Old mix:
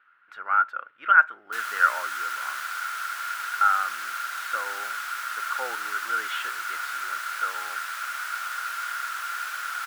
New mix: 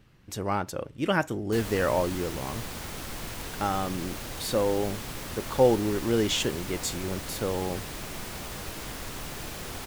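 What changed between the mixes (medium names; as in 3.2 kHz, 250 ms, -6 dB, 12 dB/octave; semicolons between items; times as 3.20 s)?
speech: remove distance through air 500 m; master: remove resonant high-pass 1.4 kHz, resonance Q 15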